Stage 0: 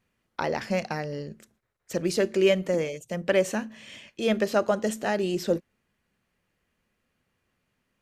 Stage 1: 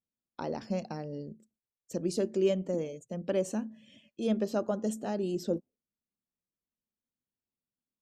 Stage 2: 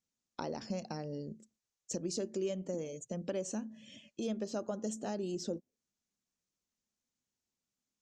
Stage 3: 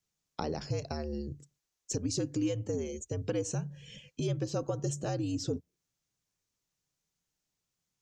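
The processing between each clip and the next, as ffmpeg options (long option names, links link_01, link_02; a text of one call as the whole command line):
ffmpeg -i in.wav -af "afftdn=noise_reduction=17:noise_floor=-48,equalizer=frequency=250:width_type=o:width=1:gain=7,equalizer=frequency=2000:width_type=o:width=1:gain=-12,equalizer=frequency=8000:width_type=o:width=1:gain=3,volume=-8dB" out.wav
ffmpeg -i in.wav -af "acompressor=threshold=-41dB:ratio=2.5,lowpass=frequency=6600:width_type=q:width=2.9,volume=2.5dB" out.wav
ffmpeg -i in.wav -af "afreqshift=-76,volume=4.5dB" out.wav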